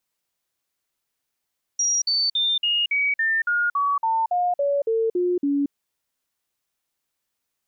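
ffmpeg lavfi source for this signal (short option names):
-f lavfi -i "aevalsrc='0.119*clip(min(mod(t,0.28),0.23-mod(t,0.28))/0.005,0,1)*sin(2*PI*5710*pow(2,-floor(t/0.28)/3)*mod(t,0.28))':d=3.92:s=44100"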